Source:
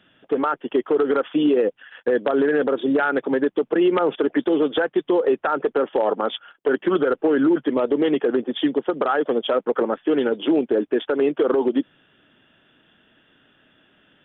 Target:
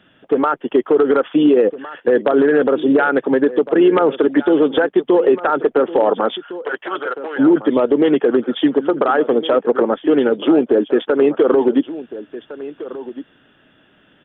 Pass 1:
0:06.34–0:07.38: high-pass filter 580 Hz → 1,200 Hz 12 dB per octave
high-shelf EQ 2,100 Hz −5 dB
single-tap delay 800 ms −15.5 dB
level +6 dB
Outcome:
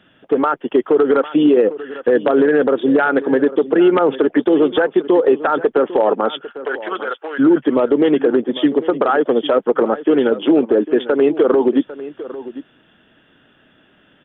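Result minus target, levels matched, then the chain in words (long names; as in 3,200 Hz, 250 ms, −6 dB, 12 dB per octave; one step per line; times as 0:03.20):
echo 609 ms early
0:06.34–0:07.38: high-pass filter 580 Hz → 1,200 Hz 12 dB per octave
high-shelf EQ 2,100 Hz −5 dB
single-tap delay 1,409 ms −15.5 dB
level +6 dB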